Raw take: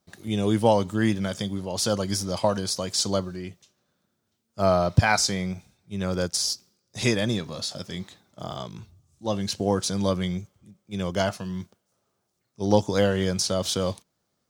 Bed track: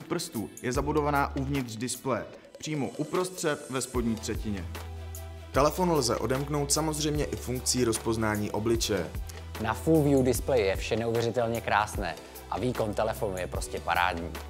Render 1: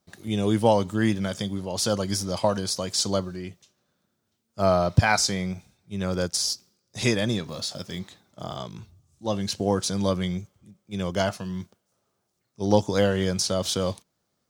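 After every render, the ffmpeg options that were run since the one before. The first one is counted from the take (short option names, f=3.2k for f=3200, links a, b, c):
-filter_complex "[0:a]asettb=1/sr,asplit=3[a][b][c];[a]atrim=end=7.484[d];[b]atrim=start=7.48:end=7.99,asetpts=PTS-STARTPTS,afade=t=in:d=0.004:c=qsin,afade=t=out:st=0.506:d=0.004:c=qsin,acrusher=bits=6:mode=log:mix=0:aa=0.000001[e];[c]atrim=start=7.986[f];[d][e]acrossfade=d=0.004:c1=hsin:c2=qsin[g];[g][f]acrossfade=d=0.004:c1=qsin:c2=hsin"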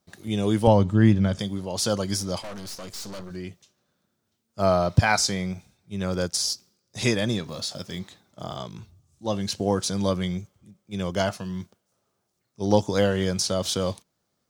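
-filter_complex "[0:a]asettb=1/sr,asplit=3[a][b][c];[a]atrim=end=0.674[d];[b]atrim=start=0.67:end=1.39,asetpts=PTS-STARTPTS,afade=t=in:d=0.004:c=qsin,afade=t=out:st=0.716:d=0.004:c=qsin,aemphasis=mode=reproduction:type=bsi[e];[c]atrim=start=1.386[f];[d][e]acrossfade=d=0.004:c1=hsin:c2=qsin[g];[g][f]acrossfade=d=0.004:c1=qsin:c2=hsin,asettb=1/sr,asplit=3[h][i][j];[h]atrim=end=2.414[k];[i]atrim=start=2.41:end=3.31,asetpts=PTS-STARTPTS,afade=t=in:d=0.004:c=qsin,afade=t=out:st=0.896:d=0.004:c=qsin,aeval=exprs='(tanh(56.2*val(0)+0.7)-tanh(0.7))/56.2':c=same[l];[j]atrim=start=3.306[m];[k][l]acrossfade=d=0.004:c1=hsin:c2=qsin[n];[n][m]acrossfade=d=0.004:c1=qsin:c2=hsin"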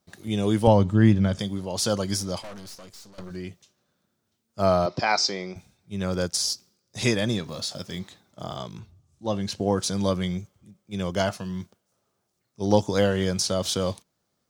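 -filter_complex "[0:a]asettb=1/sr,asplit=3[a][b][c];[a]atrim=end=4.864[d];[b]atrim=start=4.86:end=5.56,asetpts=PTS-STARTPTS,afade=t=in:d=0.004:c=qsin,afade=t=out:st=0.696:d=0.004:c=qsin,highpass=310,equalizer=f=360:t=q:w=4:g=6,equalizer=f=1.6k:t=q:w=4:g=-5,equalizer=f=3.2k:t=q:w=4:g=-5,equalizer=f=5.1k:t=q:w=4:g=5,lowpass=f=5.6k:w=0.5412,lowpass=f=5.6k:w=1.3066[e];[c]atrim=start=5.556[f];[d][e]acrossfade=d=0.004:c1=hsin:c2=qsin[g];[g][f]acrossfade=d=0.004:c1=qsin:c2=hsin,asettb=1/sr,asplit=3[h][i][j];[h]atrim=end=8.794[k];[i]atrim=start=8.79:end=9.78,asetpts=PTS-STARTPTS,afade=t=in:d=0.004:c=qsin,afade=t=out:st=0.986:d=0.004:c=qsin,highshelf=f=4.6k:g=-6.5[l];[j]atrim=start=9.776[m];[k][l]acrossfade=d=0.004:c1=hsin:c2=qsin[n];[n][m]acrossfade=d=0.004:c1=qsin:c2=hsin,asplit=2[o][p];[o]atrim=end=3.18,asetpts=PTS-STARTPTS,afade=t=out:st=2.17:d=1.01:silence=0.158489[q];[p]atrim=start=3.18,asetpts=PTS-STARTPTS,afade=t=in:d=0.004:c=hsin:silence=0.158489[r];[q][r]concat=n=2:v=0:a=1"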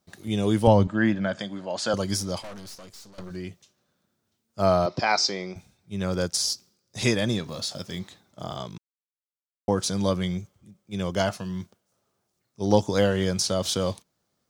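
-filter_complex "[0:a]asettb=1/sr,asplit=3[a][b][c];[a]atrim=end=0.874[d];[b]atrim=start=0.87:end=1.94,asetpts=PTS-STARTPTS,afade=t=in:d=0.004:c=qsin,afade=t=out:st=1.066:d=0.004:c=qsin,highpass=240,equalizer=f=420:t=q:w=4:g=-8,equalizer=f=630:t=q:w=4:g=6,equalizer=f=1.6k:t=q:w=4:g=8,equalizer=f=3.7k:t=q:w=4:g=-3,equalizer=f=5.7k:t=q:w=4:g=-9,lowpass=f=7k:w=0.5412,lowpass=f=7k:w=1.3066[e];[c]atrim=start=1.936[f];[d][e]acrossfade=d=0.004:c1=hsin:c2=qsin[g];[g][f]acrossfade=d=0.004:c1=qsin:c2=hsin,asplit=3[h][i][j];[h]atrim=end=8.78,asetpts=PTS-STARTPTS,afade=t=out:st=8.776:d=0.004:c=hsin[k];[i]atrim=start=8.78:end=9.68,asetpts=PTS-STARTPTS,volume=0[l];[j]atrim=start=9.68,asetpts=PTS-STARTPTS,afade=t=in:d=0.004:c=hsin[m];[k][l][m]concat=n=3:v=0:a=1"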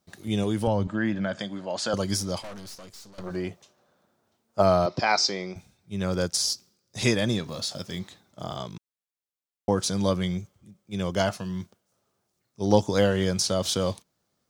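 -filter_complex "[0:a]asettb=1/sr,asplit=3[a][b][c];[a]atrim=end=0.434[d];[b]atrim=start=0.43:end=1.93,asetpts=PTS-STARTPTS,afade=t=in:d=0.004:c=qsin,afade=t=out:st=1.496:d=0.004:c=qsin,acompressor=threshold=-24dB:ratio=2:attack=3.2:release=140:knee=1:detection=peak[e];[c]atrim=start=1.926[f];[d][e]acrossfade=d=0.004:c1=hsin:c2=qsin[g];[g][f]acrossfade=d=0.004:c1=qsin:c2=hsin,asplit=3[h][i][j];[h]afade=t=out:st=3.23:d=0.02[k];[i]equalizer=f=740:t=o:w=2.2:g=12,afade=t=in:st=3.23:d=0.02,afade=t=out:st=4.61:d=0.02[l];[j]afade=t=in:st=4.61:d=0.02[m];[k][l][m]amix=inputs=3:normalize=0"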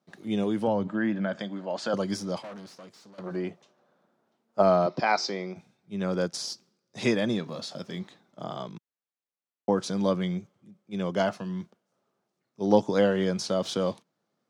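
-af "highpass=f=150:w=0.5412,highpass=f=150:w=1.3066,aemphasis=mode=reproduction:type=75kf"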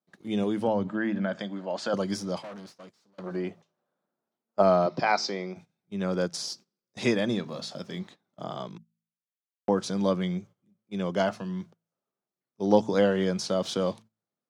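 -af "bandreject=f=54.96:t=h:w=4,bandreject=f=109.92:t=h:w=4,bandreject=f=164.88:t=h:w=4,bandreject=f=219.84:t=h:w=4,agate=range=-14dB:threshold=-47dB:ratio=16:detection=peak"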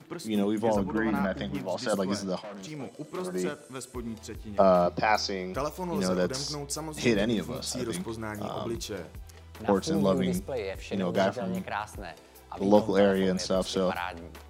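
-filter_complex "[1:a]volume=-8dB[a];[0:a][a]amix=inputs=2:normalize=0"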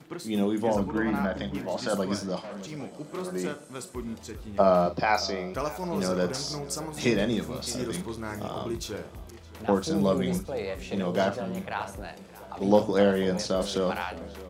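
-filter_complex "[0:a]asplit=2[a][b];[b]adelay=40,volume=-11dB[c];[a][c]amix=inputs=2:normalize=0,asplit=2[d][e];[e]adelay=617,lowpass=f=3.3k:p=1,volume=-18dB,asplit=2[f][g];[g]adelay=617,lowpass=f=3.3k:p=1,volume=0.52,asplit=2[h][i];[i]adelay=617,lowpass=f=3.3k:p=1,volume=0.52,asplit=2[j][k];[k]adelay=617,lowpass=f=3.3k:p=1,volume=0.52[l];[d][f][h][j][l]amix=inputs=5:normalize=0"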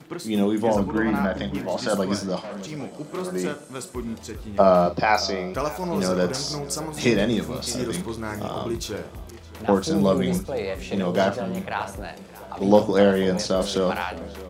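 -af "volume=4.5dB"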